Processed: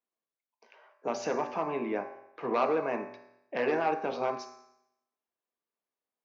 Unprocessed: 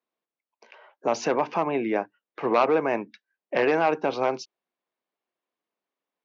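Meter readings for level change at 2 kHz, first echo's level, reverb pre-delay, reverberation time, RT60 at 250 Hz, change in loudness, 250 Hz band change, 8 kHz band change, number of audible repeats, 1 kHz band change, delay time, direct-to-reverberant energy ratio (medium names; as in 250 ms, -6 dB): -7.5 dB, no echo, 4 ms, 0.80 s, 0.80 s, -6.5 dB, -7.0 dB, no reading, no echo, -6.0 dB, no echo, 4.0 dB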